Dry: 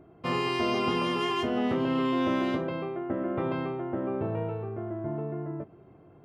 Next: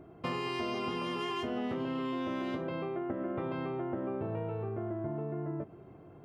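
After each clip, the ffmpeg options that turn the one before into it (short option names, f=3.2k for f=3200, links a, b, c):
-af "acompressor=threshold=-34dB:ratio=6,volume=1.5dB"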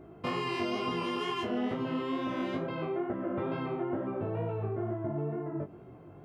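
-af "flanger=delay=16:depth=4.8:speed=2.2,volume=5dB"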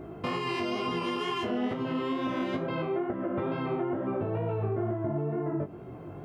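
-af "alimiter=level_in=6.5dB:limit=-24dB:level=0:latency=1:release=427,volume=-6.5dB,volume=8.5dB"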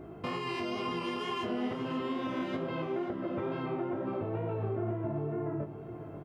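-af "aecho=1:1:538|1076|1614|2152|2690:0.266|0.122|0.0563|0.0259|0.0119,volume=-4dB"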